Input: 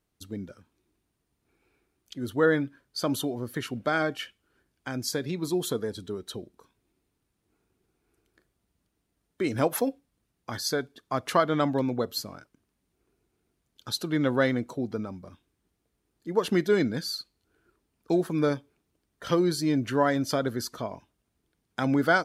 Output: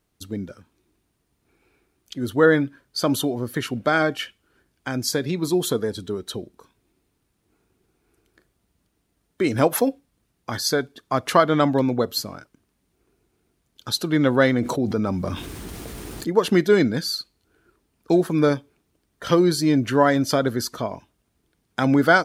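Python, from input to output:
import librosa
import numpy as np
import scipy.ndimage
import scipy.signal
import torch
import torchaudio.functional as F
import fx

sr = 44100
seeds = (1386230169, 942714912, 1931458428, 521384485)

y = fx.env_flatten(x, sr, amount_pct=70, at=(14.58, 16.3))
y = F.gain(torch.from_numpy(y), 6.5).numpy()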